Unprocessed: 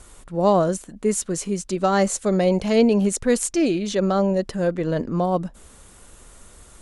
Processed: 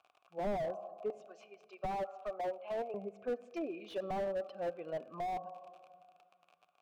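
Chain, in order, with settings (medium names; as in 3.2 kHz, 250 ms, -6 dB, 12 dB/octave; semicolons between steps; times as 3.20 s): expander on every frequency bin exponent 1.5; low-pass that closes with the level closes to 780 Hz, closed at -17 dBFS; high-pass 110 Hz 12 dB/octave, from 1.10 s 660 Hz, from 2.94 s 140 Hz; level-controlled noise filter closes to 2.4 kHz, open at -20 dBFS; bass shelf 400 Hz -9 dB; crackle 41 per s -36 dBFS; vowel filter a; simulated room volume 2900 m³, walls mixed, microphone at 0.34 m; slew-rate limiter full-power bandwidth 5.5 Hz; trim +7 dB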